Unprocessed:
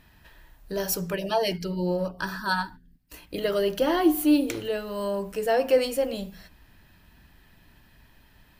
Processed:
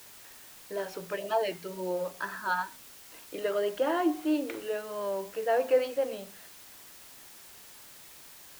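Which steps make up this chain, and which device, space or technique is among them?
wax cylinder (band-pass filter 380–2,300 Hz; tape wow and flutter; white noise bed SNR 18 dB)
level −2.5 dB

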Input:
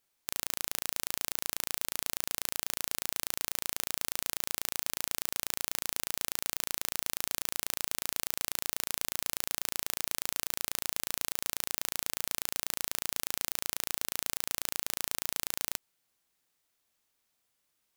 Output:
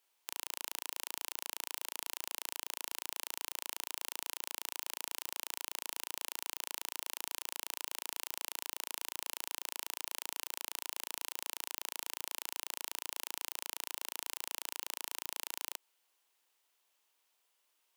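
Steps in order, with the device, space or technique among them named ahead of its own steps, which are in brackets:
laptop speaker (high-pass filter 330 Hz 24 dB per octave; parametric band 950 Hz +6 dB 0.41 octaves; parametric band 2,900 Hz +5 dB 0.44 octaves; brickwall limiter −11.5 dBFS, peak gain reduction 7 dB)

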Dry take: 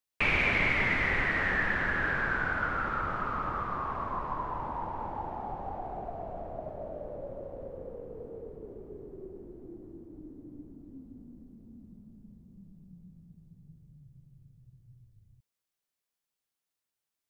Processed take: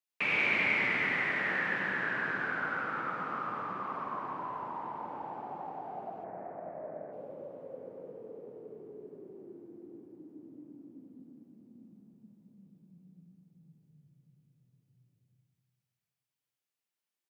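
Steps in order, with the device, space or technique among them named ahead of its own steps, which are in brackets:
PA in a hall (high-pass filter 150 Hz 24 dB per octave; parametric band 2,400 Hz +3 dB 0.77 octaves; single-tap delay 96 ms −6 dB; convolution reverb RT60 1.7 s, pre-delay 75 ms, DRR 3 dB)
0:06.24–0:07.13: high shelf with overshoot 2,600 Hz −11.5 dB, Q 3
level −6.5 dB

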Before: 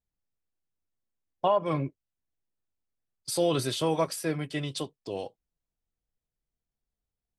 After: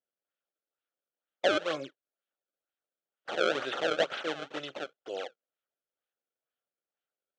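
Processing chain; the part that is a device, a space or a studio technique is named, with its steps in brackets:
circuit-bent sampling toy (sample-and-hold swept by an LFO 27×, swing 160% 2.1 Hz; loudspeaker in its box 500–5,400 Hz, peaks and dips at 550 Hz +4 dB, 990 Hz −10 dB, 1,400 Hz +6 dB, 2,100 Hz −4 dB, 3,200 Hz +5 dB, 4,900 Hz −8 dB)

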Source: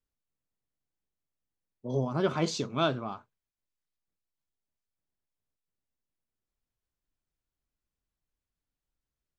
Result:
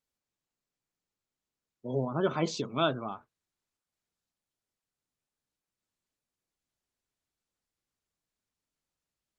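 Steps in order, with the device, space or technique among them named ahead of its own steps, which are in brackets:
noise-suppressed video call (high-pass filter 130 Hz 6 dB per octave; gate on every frequency bin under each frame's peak −30 dB strong; Opus 20 kbit/s 48,000 Hz)

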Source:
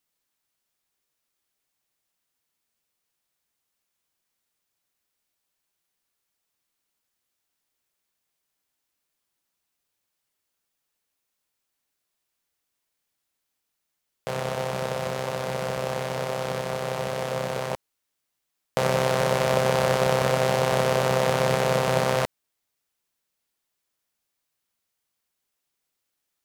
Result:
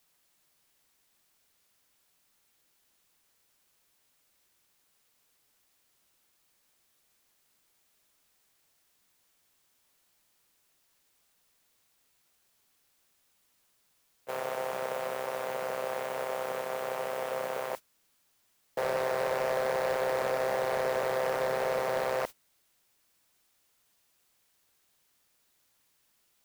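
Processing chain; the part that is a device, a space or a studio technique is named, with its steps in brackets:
aircraft radio (band-pass filter 390–2,600 Hz; hard clipping −20.5 dBFS, distortion −11 dB; white noise bed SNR 13 dB; noise gate −32 dBFS, range −21 dB)
level −3.5 dB

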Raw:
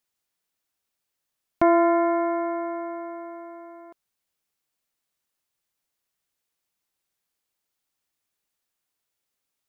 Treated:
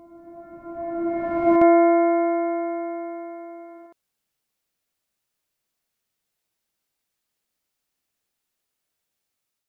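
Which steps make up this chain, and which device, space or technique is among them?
reverse reverb (reversed playback; convolution reverb RT60 2.6 s, pre-delay 55 ms, DRR −4 dB; reversed playback)
parametric band 1,100 Hz −2.5 dB
level −2.5 dB

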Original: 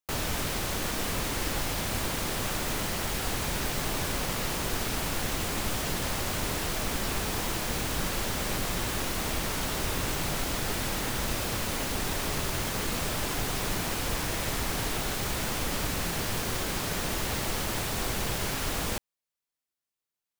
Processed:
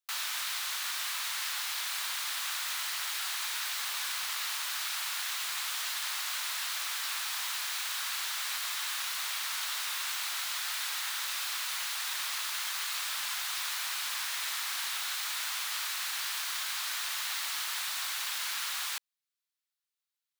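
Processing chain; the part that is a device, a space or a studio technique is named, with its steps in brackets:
headphones lying on a table (high-pass filter 1,100 Hz 24 dB per octave; parametric band 3,900 Hz +4.5 dB 0.55 octaves)
level −1.5 dB

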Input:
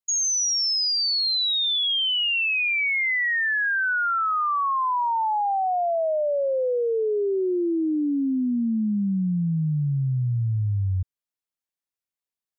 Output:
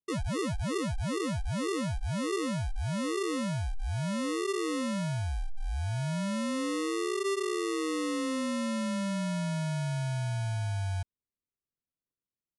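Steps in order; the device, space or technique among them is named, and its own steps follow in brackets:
crushed at another speed (tape speed factor 2×; decimation without filtering 28×; tape speed factor 0.5×)
level −8 dB

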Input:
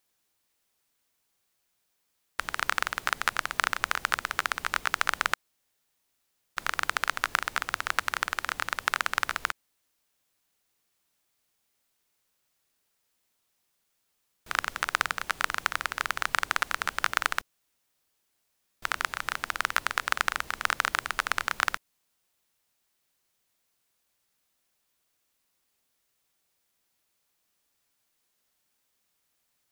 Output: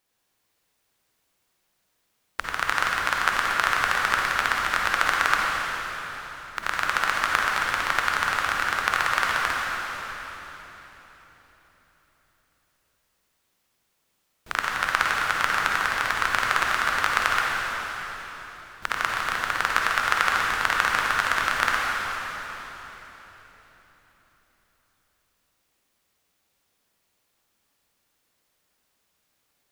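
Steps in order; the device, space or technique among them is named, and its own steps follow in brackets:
swimming-pool hall (convolution reverb RT60 4.1 s, pre-delay 45 ms, DRR −2.5 dB; high-shelf EQ 3,900 Hz −6 dB)
level +3 dB

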